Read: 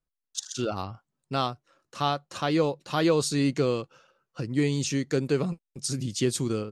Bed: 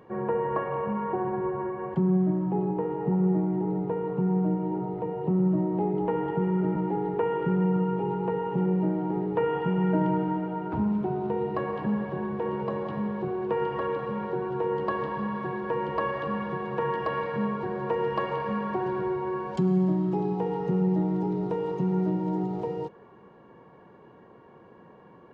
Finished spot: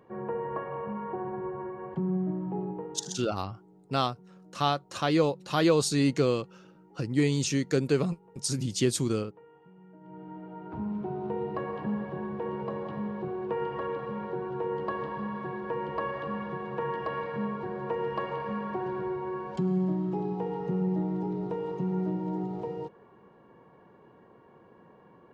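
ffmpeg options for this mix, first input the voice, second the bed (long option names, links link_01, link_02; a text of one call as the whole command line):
ffmpeg -i stem1.wav -i stem2.wav -filter_complex "[0:a]adelay=2600,volume=0dB[link_01];[1:a]volume=19dB,afade=type=out:start_time=2.61:duration=0.63:silence=0.0707946,afade=type=in:start_time=10.01:duration=1.32:silence=0.0562341[link_02];[link_01][link_02]amix=inputs=2:normalize=0" out.wav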